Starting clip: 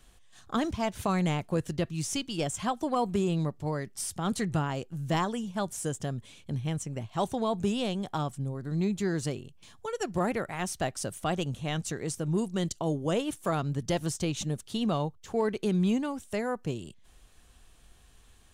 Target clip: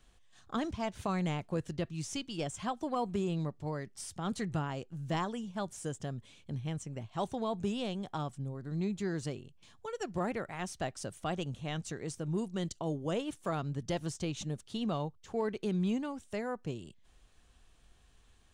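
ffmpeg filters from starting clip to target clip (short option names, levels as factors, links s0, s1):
-af "equalizer=f=13000:t=o:w=0.67:g=-12,volume=0.531"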